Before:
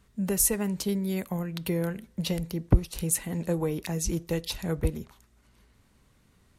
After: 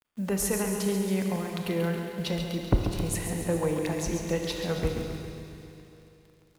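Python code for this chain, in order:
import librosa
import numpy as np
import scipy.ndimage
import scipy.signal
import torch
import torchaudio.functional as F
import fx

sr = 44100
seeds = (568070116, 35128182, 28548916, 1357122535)

y = fx.lowpass(x, sr, hz=2200.0, slope=6)
y = fx.low_shelf(y, sr, hz=440.0, db=-8.5)
y = fx.quant_dither(y, sr, seeds[0], bits=10, dither='none')
y = fx.echo_feedback(y, sr, ms=137, feedback_pct=60, wet_db=-8.0)
y = fx.rev_schroeder(y, sr, rt60_s=3.0, comb_ms=26, drr_db=4.0)
y = y * librosa.db_to_amplitude(4.5)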